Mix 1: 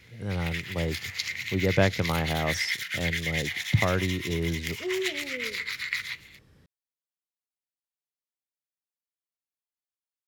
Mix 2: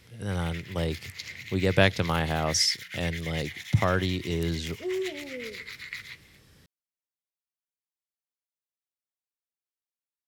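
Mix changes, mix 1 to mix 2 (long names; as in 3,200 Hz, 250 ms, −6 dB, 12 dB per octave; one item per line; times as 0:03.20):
speech: add high-shelf EQ 2,200 Hz +11.5 dB
first sound −8.0 dB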